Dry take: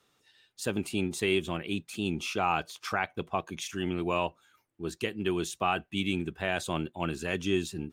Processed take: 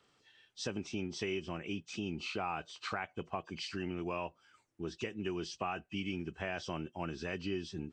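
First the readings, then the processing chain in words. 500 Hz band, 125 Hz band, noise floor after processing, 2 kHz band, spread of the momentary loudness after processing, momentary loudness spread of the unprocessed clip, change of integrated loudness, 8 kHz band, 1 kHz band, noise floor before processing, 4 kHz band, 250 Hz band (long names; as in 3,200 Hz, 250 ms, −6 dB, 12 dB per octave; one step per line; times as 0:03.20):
−8.0 dB, −7.0 dB, −73 dBFS, −8.0 dB, 4 LU, 6 LU, −8.0 dB, −10.0 dB, −9.0 dB, −72 dBFS, −7.5 dB, −7.5 dB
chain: hearing-aid frequency compression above 2,500 Hz 1.5 to 1
downward compressor 2.5 to 1, threshold −38 dBFS, peak gain reduction 10 dB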